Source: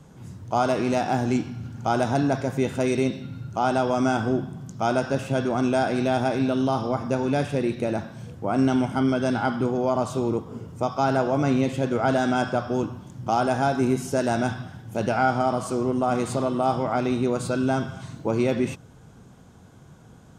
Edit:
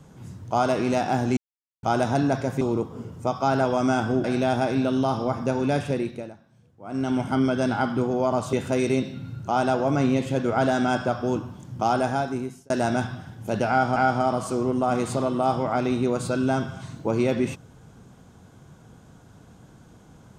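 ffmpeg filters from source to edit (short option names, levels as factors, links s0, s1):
-filter_complex "[0:a]asplit=12[s0][s1][s2][s3][s4][s5][s6][s7][s8][s9][s10][s11];[s0]atrim=end=1.37,asetpts=PTS-STARTPTS,afade=t=out:st=1.366:d=0.004:c=hsin[s12];[s1]atrim=start=1.37:end=1.83,asetpts=PTS-STARTPTS,volume=0[s13];[s2]atrim=start=1.83:end=2.612,asetpts=PTS-STARTPTS,afade=t=in:d=0.004:c=hsin[s14];[s3]atrim=start=10.168:end=11.212[s15];[s4]atrim=start=3.818:end=4.412[s16];[s5]atrim=start=5.878:end=7.98,asetpts=PTS-STARTPTS,afade=t=out:st=1.652:d=0.45:silence=0.105925[s17];[s6]atrim=start=7.98:end=8.45,asetpts=PTS-STARTPTS,volume=0.106[s18];[s7]atrim=start=8.45:end=10.172,asetpts=PTS-STARTPTS,afade=t=in:d=0.45:silence=0.105925[s19];[s8]atrim=start=2.608:end=3.822[s20];[s9]atrim=start=11.208:end=14.17,asetpts=PTS-STARTPTS,afade=t=out:st=2.242:d=0.72[s21];[s10]atrim=start=14.17:end=15.432,asetpts=PTS-STARTPTS,afade=t=in:d=0.004:c=hsin[s22];[s11]atrim=start=15.158[s23];[s12][s13][s14]concat=n=3:v=0:a=1[s24];[s24][s15]acrossfade=d=0.004:c1=hsin:c2=hsin[s25];[s25][s16]acrossfade=d=0.004:c1=hsin:c2=hsin[s26];[s17][s18][s19]concat=n=3:v=0:a=1[s27];[s26][s27]acrossfade=d=0.004:c1=hsin:c2=hsin[s28];[s28][s20]acrossfade=d=0.004:c1=hsin:c2=hsin[s29];[s21][s22]concat=n=2:v=0:a=1[s30];[s29][s30]acrossfade=d=0.004:c1=hsin:c2=hsin[s31];[s31][s23]acrossfade=d=0.004:c1=hsin:c2=hsin"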